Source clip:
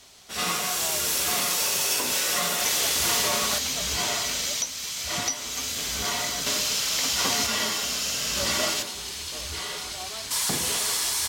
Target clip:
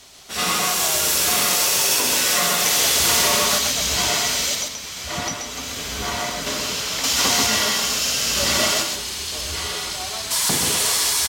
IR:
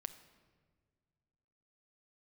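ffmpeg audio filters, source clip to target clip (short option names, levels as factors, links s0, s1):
-filter_complex "[0:a]asettb=1/sr,asplit=3[s0][s1][s2];[s0]atrim=end=4.554[s3];[s1]atrim=start=4.55:end=7.04,asetpts=PTS-STARTPTS,afade=t=in:d=0.004:c=qsin,afade=t=out:st=2.486:d=0.004:c=qsin,highshelf=f=2700:g=-8.5[s4];[s2]atrim=start=7.036[s5];[s3][s4]acrossfade=d=0.004:c1=hsin:c2=qsin[s6];[s6][s5]acrossfade=d=0.004:c1=qsin:c2=hsin,aecho=1:1:131:0.596,volume=1.78"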